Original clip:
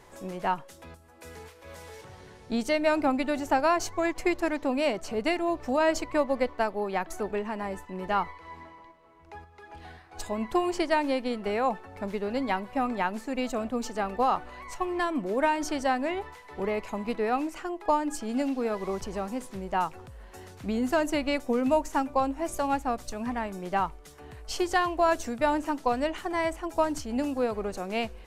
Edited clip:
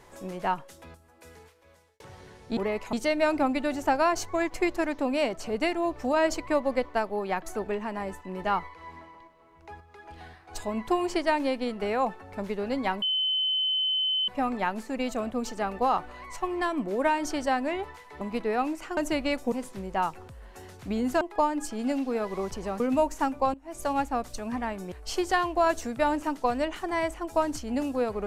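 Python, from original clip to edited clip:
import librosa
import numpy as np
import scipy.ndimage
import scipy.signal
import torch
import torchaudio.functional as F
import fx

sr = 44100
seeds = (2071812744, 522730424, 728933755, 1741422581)

y = fx.edit(x, sr, fx.fade_out_span(start_s=0.73, length_s=1.27),
    fx.insert_tone(at_s=12.66, length_s=1.26, hz=3050.0, db=-23.5),
    fx.move(start_s=16.59, length_s=0.36, to_s=2.57),
    fx.swap(start_s=17.71, length_s=1.59, other_s=20.99, other_length_s=0.55),
    fx.fade_in_from(start_s=22.28, length_s=0.32, curve='qua', floor_db=-18.0),
    fx.cut(start_s=23.66, length_s=0.68), tone=tone)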